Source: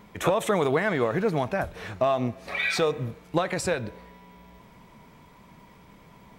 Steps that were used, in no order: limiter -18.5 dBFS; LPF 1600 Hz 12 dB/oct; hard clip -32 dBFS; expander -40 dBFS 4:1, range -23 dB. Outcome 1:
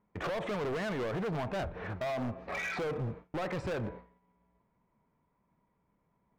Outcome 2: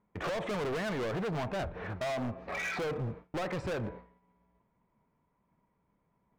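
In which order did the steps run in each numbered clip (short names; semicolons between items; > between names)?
limiter > LPF > expander > hard clip; expander > LPF > hard clip > limiter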